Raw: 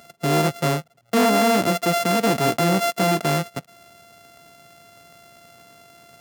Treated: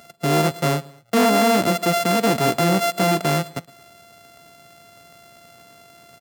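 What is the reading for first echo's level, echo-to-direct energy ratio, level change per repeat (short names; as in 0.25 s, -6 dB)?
-23.0 dB, -22.0 dB, -5.0 dB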